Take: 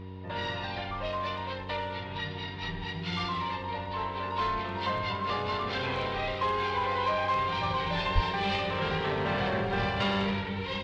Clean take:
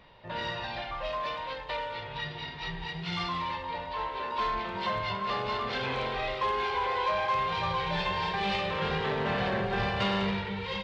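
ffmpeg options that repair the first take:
-filter_complex "[0:a]bandreject=f=93.7:t=h:w=4,bandreject=f=187.4:t=h:w=4,bandreject=f=281.1:t=h:w=4,bandreject=f=374.8:t=h:w=4,bandreject=f=468.5:t=h:w=4,bandreject=f=970:w=30,asplit=3[a][b][c];[a]afade=t=out:st=8.14:d=0.02[d];[b]highpass=f=140:w=0.5412,highpass=f=140:w=1.3066,afade=t=in:st=8.14:d=0.02,afade=t=out:st=8.26:d=0.02[e];[c]afade=t=in:st=8.26:d=0.02[f];[d][e][f]amix=inputs=3:normalize=0"

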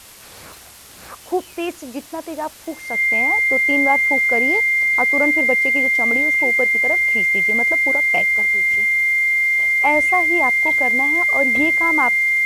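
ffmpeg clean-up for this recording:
-af "adeclick=t=4,bandreject=f=2.1k:w=30,afwtdn=0.0089"

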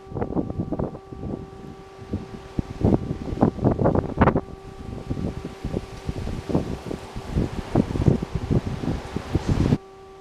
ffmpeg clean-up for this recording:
-af "bandreject=f=386.1:t=h:w=4,bandreject=f=772.2:t=h:w=4,bandreject=f=1.1583k:t=h:w=4"

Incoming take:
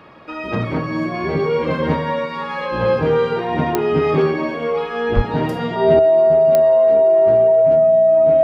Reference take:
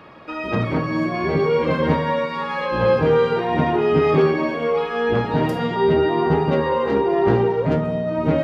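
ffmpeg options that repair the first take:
-filter_complex "[0:a]adeclick=t=4,bandreject=f=650:w=30,asplit=3[a][b][c];[a]afade=t=out:st=5.15:d=0.02[d];[b]highpass=f=140:w=0.5412,highpass=f=140:w=1.3066,afade=t=in:st=5.15:d=0.02,afade=t=out:st=5.27:d=0.02[e];[c]afade=t=in:st=5.27:d=0.02[f];[d][e][f]amix=inputs=3:normalize=0,asetnsamples=n=441:p=0,asendcmd='5.99 volume volume 10dB',volume=0dB"

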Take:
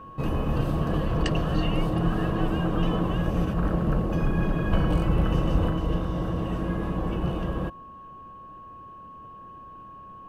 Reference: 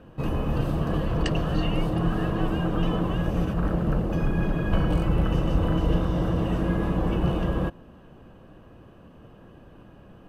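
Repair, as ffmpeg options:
-af "bandreject=f=1.1k:w=30,asetnsamples=n=441:p=0,asendcmd='5.7 volume volume 3.5dB',volume=0dB"

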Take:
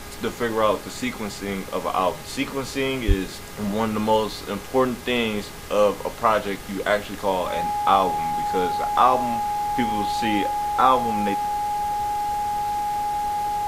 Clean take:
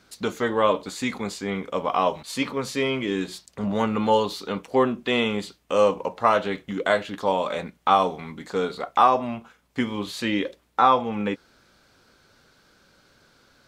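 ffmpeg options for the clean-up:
-filter_complex "[0:a]bandreject=f=409.8:t=h:w=4,bandreject=f=819.6:t=h:w=4,bandreject=f=1.2294k:t=h:w=4,bandreject=f=1.6392k:t=h:w=4,bandreject=f=2.049k:t=h:w=4,bandreject=f=830:w=30,asplit=3[a][b][c];[a]afade=t=out:st=3.07:d=0.02[d];[b]highpass=f=140:w=0.5412,highpass=f=140:w=1.3066,afade=t=in:st=3.07:d=0.02,afade=t=out:st=3.19:d=0.02[e];[c]afade=t=in:st=3.19:d=0.02[f];[d][e][f]amix=inputs=3:normalize=0,afftdn=nr=24:nf=-35"

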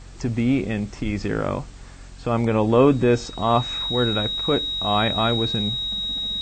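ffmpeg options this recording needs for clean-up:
-af "bandreject=f=45.3:t=h:w=4,bandreject=f=90.6:t=h:w=4,bandreject=f=135.9:t=h:w=4,bandreject=f=181.2:t=h:w=4,bandreject=f=226.5:t=h:w=4,bandreject=f=271.8:t=h:w=4,bandreject=f=3.8k:w=30"

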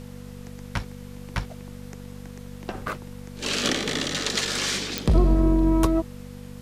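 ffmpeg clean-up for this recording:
-af "adeclick=t=4,bandreject=f=48.5:t=h:w=4,bandreject=f=97:t=h:w=4,bandreject=f=145.5:t=h:w=4,bandreject=f=194:t=h:w=4,bandreject=f=242.5:t=h:w=4,bandreject=f=490:w=30,afftdn=nr=28:nf=-40"

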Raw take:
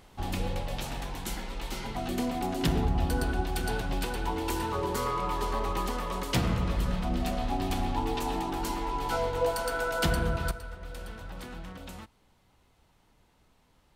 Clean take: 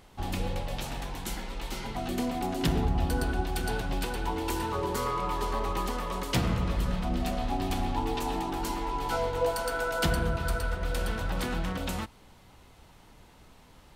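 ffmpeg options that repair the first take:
-af "asetnsamples=n=441:p=0,asendcmd='10.51 volume volume 10.5dB',volume=0dB"

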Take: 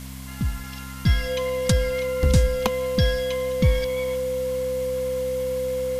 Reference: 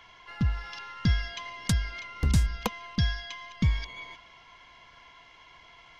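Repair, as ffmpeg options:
-af "bandreject=f=65.6:t=h:w=4,bandreject=f=131.2:t=h:w=4,bandreject=f=196.8:t=h:w=4,bandreject=f=262.4:t=h:w=4,bandreject=f=510:w=30,afwtdn=0.0071,asetnsamples=n=441:p=0,asendcmd='1.06 volume volume -5dB',volume=0dB"

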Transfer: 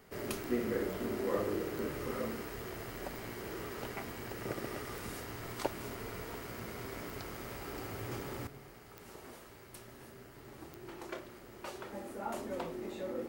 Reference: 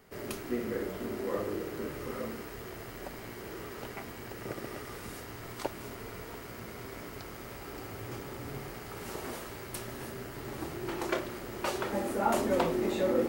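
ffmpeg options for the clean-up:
-af "adeclick=t=4,asetnsamples=n=441:p=0,asendcmd='8.47 volume volume 11.5dB',volume=0dB"

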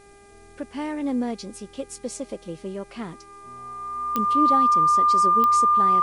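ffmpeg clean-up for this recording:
-af "adeclick=t=4,bandreject=f=401.9:t=h:w=4,bandreject=f=803.8:t=h:w=4,bandreject=f=1.2057k:t=h:w=4,bandreject=f=1.6076k:t=h:w=4,bandreject=f=2.0095k:t=h:w=4,bandreject=f=2.4114k:t=h:w=4,bandreject=f=1.2k:w=30,agate=range=-21dB:threshold=-41dB"

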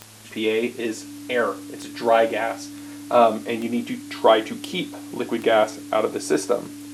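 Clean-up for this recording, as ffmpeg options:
-af "adeclick=t=4,bandreject=f=108.3:t=h:w=4,bandreject=f=216.6:t=h:w=4,bandreject=f=324.9:t=h:w=4,bandreject=f=290:w=30,afwtdn=0.0056"

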